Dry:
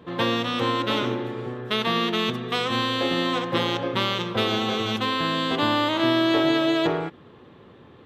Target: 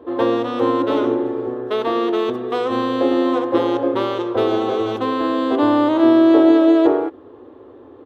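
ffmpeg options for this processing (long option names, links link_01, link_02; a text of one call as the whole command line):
ffmpeg -i in.wav -af "firequalizer=gain_entry='entry(110,0);entry(160,-27);entry(270,11);entry(2200,-8)':delay=0.05:min_phase=1" out.wav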